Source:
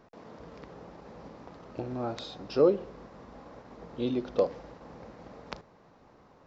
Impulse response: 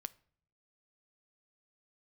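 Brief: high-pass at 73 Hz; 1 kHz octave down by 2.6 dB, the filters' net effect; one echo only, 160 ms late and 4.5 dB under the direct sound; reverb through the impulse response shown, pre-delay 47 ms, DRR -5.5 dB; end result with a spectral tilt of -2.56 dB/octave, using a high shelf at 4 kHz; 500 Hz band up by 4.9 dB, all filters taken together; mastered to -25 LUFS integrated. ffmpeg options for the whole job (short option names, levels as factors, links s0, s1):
-filter_complex "[0:a]highpass=73,equalizer=f=500:t=o:g=7,equalizer=f=1000:t=o:g=-6.5,highshelf=f=4000:g=-7.5,aecho=1:1:160:0.596,asplit=2[s0][s1];[1:a]atrim=start_sample=2205,adelay=47[s2];[s1][s2]afir=irnorm=-1:irlink=0,volume=2.82[s3];[s0][s3]amix=inputs=2:normalize=0,volume=0.473"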